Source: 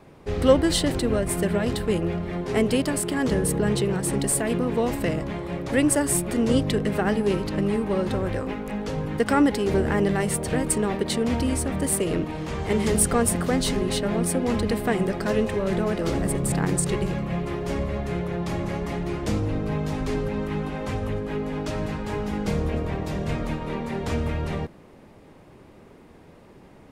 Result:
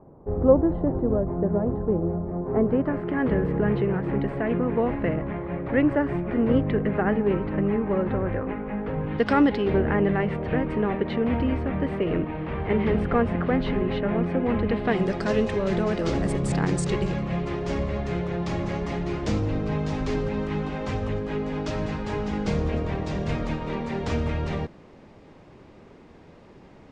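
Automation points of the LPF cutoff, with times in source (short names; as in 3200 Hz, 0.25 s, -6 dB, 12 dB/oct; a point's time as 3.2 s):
LPF 24 dB/oct
2.37 s 1000 Hz
3.18 s 2200 Hz
8.98 s 2200 Hz
9.28 s 5000 Hz
9.87 s 2600 Hz
14.63 s 2600 Hz
15.11 s 6800 Hz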